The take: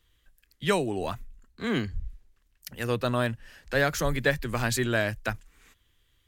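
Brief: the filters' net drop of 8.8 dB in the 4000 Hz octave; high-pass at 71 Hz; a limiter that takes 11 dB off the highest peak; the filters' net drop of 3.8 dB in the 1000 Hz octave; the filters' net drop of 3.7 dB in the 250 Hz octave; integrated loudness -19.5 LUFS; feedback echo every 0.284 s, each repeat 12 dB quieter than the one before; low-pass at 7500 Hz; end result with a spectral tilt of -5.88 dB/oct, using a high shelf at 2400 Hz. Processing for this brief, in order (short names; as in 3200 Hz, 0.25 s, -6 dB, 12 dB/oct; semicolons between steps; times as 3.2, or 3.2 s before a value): HPF 71 Hz; LPF 7500 Hz; bell 250 Hz -4.5 dB; bell 1000 Hz -3.5 dB; high shelf 2400 Hz -5.5 dB; bell 4000 Hz -6 dB; limiter -24.5 dBFS; feedback echo 0.284 s, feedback 25%, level -12 dB; gain +16.5 dB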